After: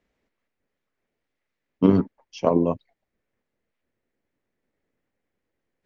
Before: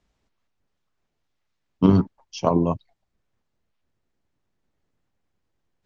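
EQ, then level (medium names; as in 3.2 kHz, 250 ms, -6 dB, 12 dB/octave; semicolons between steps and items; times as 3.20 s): graphic EQ 250/500/2000 Hz +7/+10/+11 dB; -8.0 dB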